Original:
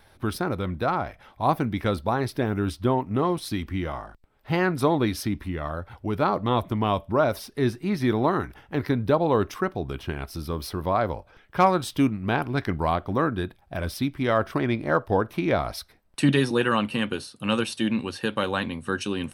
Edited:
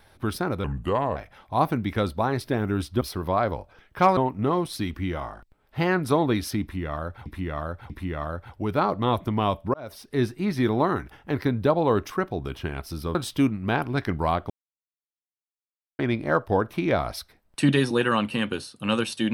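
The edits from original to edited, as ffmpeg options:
ffmpeg -i in.wav -filter_complex "[0:a]asplit=11[link_01][link_02][link_03][link_04][link_05][link_06][link_07][link_08][link_09][link_10][link_11];[link_01]atrim=end=0.644[link_12];[link_02]atrim=start=0.64:end=1.04,asetpts=PTS-STARTPTS,asetrate=33957,aresample=44100,atrim=end_sample=22909,asetpts=PTS-STARTPTS[link_13];[link_03]atrim=start=1.036:end=2.892[link_14];[link_04]atrim=start=10.588:end=11.752[link_15];[link_05]atrim=start=2.888:end=5.982[link_16];[link_06]atrim=start=5.338:end=5.982[link_17];[link_07]atrim=start=5.338:end=7.18,asetpts=PTS-STARTPTS,afade=type=out:start_time=1.838:duration=0.004:curve=hsin[link_18];[link_08]atrim=start=7.18:end=10.592,asetpts=PTS-STARTPTS,afade=type=in:duration=0.46[link_19];[link_09]atrim=start=11.748:end=13.1,asetpts=PTS-STARTPTS,afade=type=out:start_time=1.348:duration=0.004:curve=hsin[link_20];[link_10]atrim=start=13.1:end=14.59,asetpts=PTS-STARTPTS,volume=0[link_21];[link_11]atrim=start=14.59,asetpts=PTS-STARTPTS,afade=type=in:duration=0.004:curve=hsin[link_22];[link_12][link_13]acrossfade=duration=0.004:curve1=hsin:curve2=hsin[link_23];[link_23][link_14]acrossfade=duration=0.004:curve1=hsin:curve2=hsin[link_24];[link_24][link_15]acrossfade=duration=0.004:curve1=hsin:curve2=hsin[link_25];[link_25][link_16]acrossfade=duration=0.004:curve1=hsin:curve2=hsin[link_26];[link_26][link_17]acrossfade=duration=0.004:curve1=hsin:curve2=hsin[link_27];[link_18][link_19]concat=n=2:v=0:a=1[link_28];[link_27][link_28]acrossfade=duration=0.004:curve1=hsin:curve2=hsin[link_29];[link_20][link_21][link_22]concat=n=3:v=0:a=1[link_30];[link_29][link_30]acrossfade=duration=0.004:curve1=hsin:curve2=hsin" out.wav

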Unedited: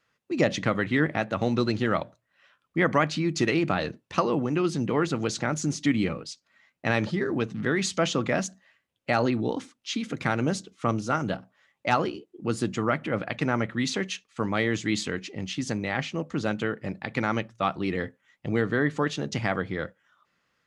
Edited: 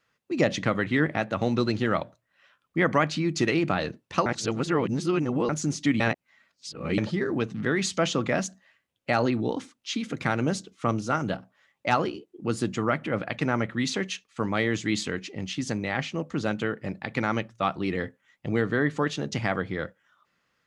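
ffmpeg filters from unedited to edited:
ffmpeg -i in.wav -filter_complex "[0:a]asplit=5[link_01][link_02][link_03][link_04][link_05];[link_01]atrim=end=4.262[link_06];[link_02]atrim=start=4.258:end=5.492,asetpts=PTS-STARTPTS,areverse[link_07];[link_03]atrim=start=5.488:end=6.002[link_08];[link_04]atrim=start=5.998:end=6.982,asetpts=PTS-STARTPTS,areverse[link_09];[link_05]atrim=start=6.978[link_10];[link_06][link_07]acrossfade=duration=0.004:curve1=hsin:curve2=hsin[link_11];[link_11][link_08]acrossfade=duration=0.004:curve1=hsin:curve2=hsin[link_12];[link_12][link_09]acrossfade=duration=0.004:curve1=hsin:curve2=hsin[link_13];[link_13][link_10]acrossfade=duration=0.004:curve1=hsin:curve2=hsin" out.wav

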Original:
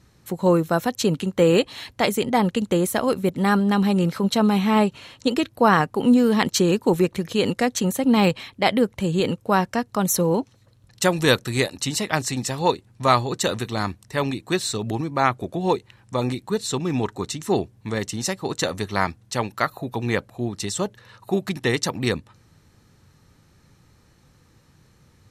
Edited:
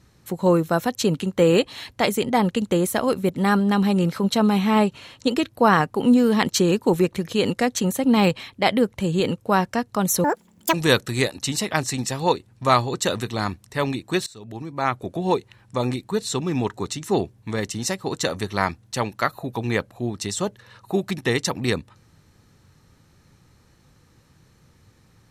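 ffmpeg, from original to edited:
ffmpeg -i in.wav -filter_complex "[0:a]asplit=4[link_01][link_02][link_03][link_04];[link_01]atrim=end=10.244[link_05];[link_02]atrim=start=10.24:end=11.12,asetpts=PTS-STARTPTS,asetrate=78498,aresample=44100,atrim=end_sample=21802,asetpts=PTS-STARTPTS[link_06];[link_03]atrim=start=11.116:end=14.65,asetpts=PTS-STARTPTS,afade=type=out:start_time=3.53:duration=0.004:curve=hsin:silence=0.0668344[link_07];[link_04]atrim=start=14.65,asetpts=PTS-STARTPTS,afade=type=in:duration=0.91:silence=0.0668344[link_08];[link_05][link_06]acrossfade=duration=0.004:curve1=hsin:curve2=hsin[link_09];[link_07][link_08]concat=n=2:v=0:a=1[link_10];[link_09][link_10]acrossfade=duration=0.004:curve1=hsin:curve2=hsin" out.wav

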